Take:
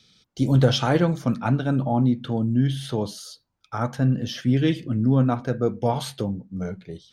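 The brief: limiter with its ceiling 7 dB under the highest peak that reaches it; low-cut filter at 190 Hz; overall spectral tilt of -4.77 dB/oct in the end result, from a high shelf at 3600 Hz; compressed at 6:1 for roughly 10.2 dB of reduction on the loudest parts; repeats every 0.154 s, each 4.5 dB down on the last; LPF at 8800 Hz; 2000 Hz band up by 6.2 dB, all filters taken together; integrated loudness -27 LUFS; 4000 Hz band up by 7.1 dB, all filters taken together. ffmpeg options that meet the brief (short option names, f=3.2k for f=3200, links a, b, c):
-af "highpass=190,lowpass=8.8k,equalizer=f=2k:t=o:g=6.5,highshelf=f=3.6k:g=5.5,equalizer=f=4k:t=o:g=3.5,acompressor=threshold=-25dB:ratio=6,alimiter=limit=-20.5dB:level=0:latency=1,aecho=1:1:154|308|462|616|770|924|1078|1232|1386:0.596|0.357|0.214|0.129|0.0772|0.0463|0.0278|0.0167|0.01,volume=2.5dB"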